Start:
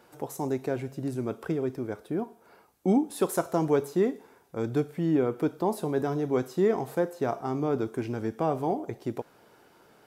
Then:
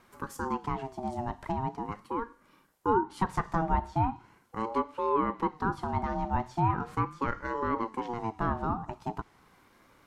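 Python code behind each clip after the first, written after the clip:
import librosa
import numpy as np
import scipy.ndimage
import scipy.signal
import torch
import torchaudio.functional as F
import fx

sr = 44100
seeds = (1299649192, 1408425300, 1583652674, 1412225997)

y = fx.env_lowpass_down(x, sr, base_hz=2100.0, full_db=-20.0)
y = fx.spec_repair(y, sr, seeds[0], start_s=2.46, length_s=0.21, low_hz=550.0, high_hz=1500.0, source='both')
y = fx.ring_lfo(y, sr, carrier_hz=600.0, swing_pct=20, hz=0.4)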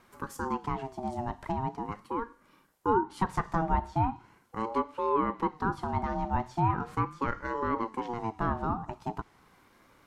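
y = x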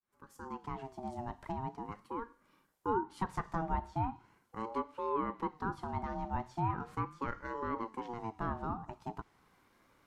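y = fx.fade_in_head(x, sr, length_s=0.86)
y = F.gain(torch.from_numpy(y), -7.0).numpy()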